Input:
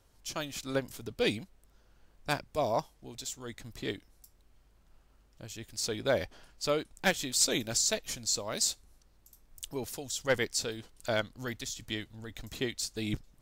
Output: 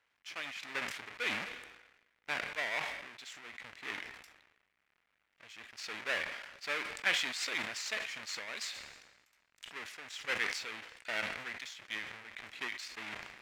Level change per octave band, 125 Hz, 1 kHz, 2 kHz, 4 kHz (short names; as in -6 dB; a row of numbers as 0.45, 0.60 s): -19.0, -5.0, +2.5, -4.5 dB